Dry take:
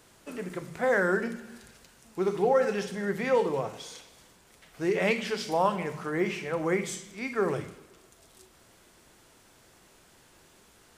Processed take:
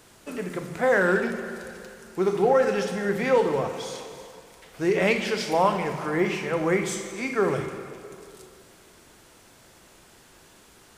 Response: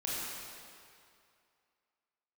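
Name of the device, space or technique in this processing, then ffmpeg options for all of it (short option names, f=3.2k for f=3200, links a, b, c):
saturated reverb return: -filter_complex "[0:a]asplit=2[a][b];[1:a]atrim=start_sample=2205[c];[b][c]afir=irnorm=-1:irlink=0,asoftclip=type=tanh:threshold=-20dB,volume=-9dB[d];[a][d]amix=inputs=2:normalize=0,volume=2.5dB"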